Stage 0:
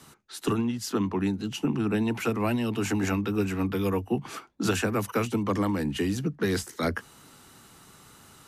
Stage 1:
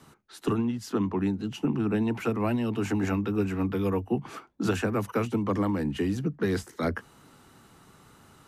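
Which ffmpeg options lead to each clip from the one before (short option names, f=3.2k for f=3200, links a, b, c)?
-af "highshelf=f=2.5k:g=-9"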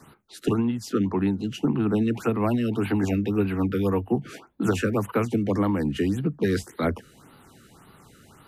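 -af "afftfilt=real='re*(1-between(b*sr/1024,810*pow(7000/810,0.5+0.5*sin(2*PI*1.8*pts/sr))/1.41,810*pow(7000/810,0.5+0.5*sin(2*PI*1.8*pts/sr))*1.41))':imag='im*(1-between(b*sr/1024,810*pow(7000/810,0.5+0.5*sin(2*PI*1.8*pts/sr))/1.41,810*pow(7000/810,0.5+0.5*sin(2*PI*1.8*pts/sr))*1.41))':win_size=1024:overlap=0.75,volume=3.5dB"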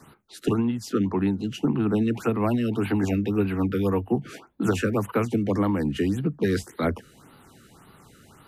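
-af anull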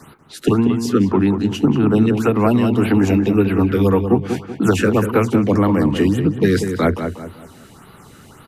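-filter_complex "[0:a]asplit=2[a][b];[b]adelay=189,lowpass=f=2.2k:p=1,volume=-7dB,asplit=2[c][d];[d]adelay=189,lowpass=f=2.2k:p=1,volume=0.37,asplit=2[e][f];[f]adelay=189,lowpass=f=2.2k:p=1,volume=0.37,asplit=2[g][h];[h]adelay=189,lowpass=f=2.2k:p=1,volume=0.37[i];[a][c][e][g][i]amix=inputs=5:normalize=0,volume=8dB"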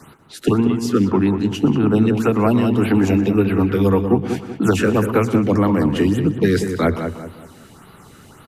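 -filter_complex "[0:a]asplit=2[a][b];[b]adelay=122.4,volume=-15dB,highshelf=f=4k:g=-2.76[c];[a][c]amix=inputs=2:normalize=0,volume=-1dB"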